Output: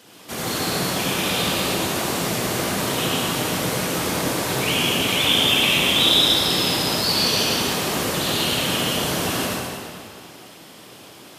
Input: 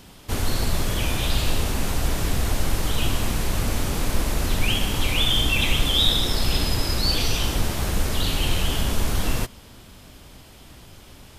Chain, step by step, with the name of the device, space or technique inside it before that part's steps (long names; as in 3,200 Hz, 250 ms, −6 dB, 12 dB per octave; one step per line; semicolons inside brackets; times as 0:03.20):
whispering ghost (random phases in short frames; high-pass filter 250 Hz 12 dB per octave; convolution reverb RT60 2.2 s, pre-delay 64 ms, DRR −5 dB)